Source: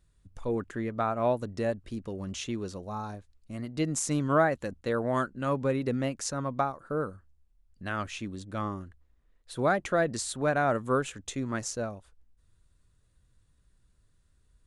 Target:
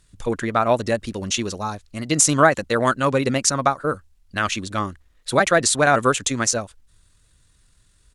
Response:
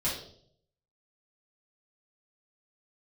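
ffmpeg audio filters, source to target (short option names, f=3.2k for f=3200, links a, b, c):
-af "crystalizer=i=8.5:c=0,atempo=1.8,aemphasis=mode=reproduction:type=50fm,volume=7dB"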